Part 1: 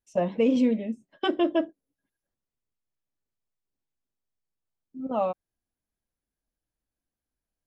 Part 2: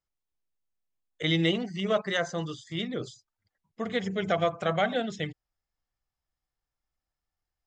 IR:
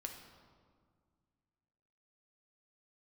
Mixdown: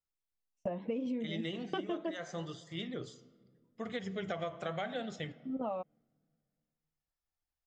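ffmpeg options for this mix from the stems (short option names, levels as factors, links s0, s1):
-filter_complex "[0:a]agate=range=0.0794:threshold=0.00355:ratio=16:detection=peak,highshelf=f=5000:g=-10.5,adelay=500,volume=0.841[s0];[1:a]flanger=delay=7.3:depth=9.6:regen=-81:speed=0.77:shape=triangular,volume=0.596,asplit=2[s1][s2];[s2]volume=0.376[s3];[2:a]atrim=start_sample=2205[s4];[s3][s4]afir=irnorm=-1:irlink=0[s5];[s0][s1][s5]amix=inputs=3:normalize=0,acompressor=threshold=0.0224:ratio=12"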